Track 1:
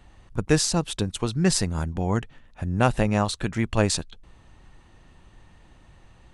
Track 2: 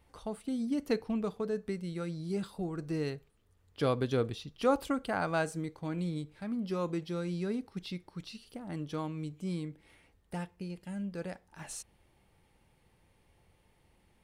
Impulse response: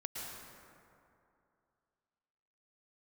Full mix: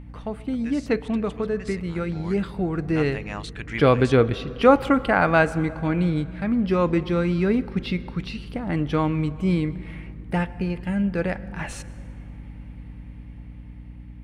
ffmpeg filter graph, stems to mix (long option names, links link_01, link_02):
-filter_complex "[0:a]tremolo=f=1:d=0.42,adelay=150,volume=-9dB[link_01];[1:a]tiltshelf=frequency=1400:gain=7.5,aeval=exprs='val(0)+0.00631*(sin(2*PI*50*n/s)+sin(2*PI*2*50*n/s)/2+sin(2*PI*3*50*n/s)/3+sin(2*PI*4*50*n/s)/4+sin(2*PI*5*50*n/s)/5)':channel_layout=same,volume=-1dB,asplit=3[link_02][link_03][link_04];[link_03]volume=-15dB[link_05];[link_04]apad=whole_len=285805[link_06];[link_01][link_06]sidechaincompress=threshold=-39dB:ratio=6:attack=40:release=806[link_07];[2:a]atrim=start_sample=2205[link_08];[link_05][link_08]afir=irnorm=-1:irlink=0[link_09];[link_07][link_02][link_09]amix=inputs=3:normalize=0,equalizer=frequency=2200:width_type=o:width=1.7:gain=14.5,dynaudnorm=framelen=670:gausssize=7:maxgain=7dB,aeval=exprs='val(0)+0.01*(sin(2*PI*60*n/s)+sin(2*PI*2*60*n/s)/2+sin(2*PI*3*60*n/s)/3+sin(2*PI*4*60*n/s)/4+sin(2*PI*5*60*n/s)/5)':channel_layout=same"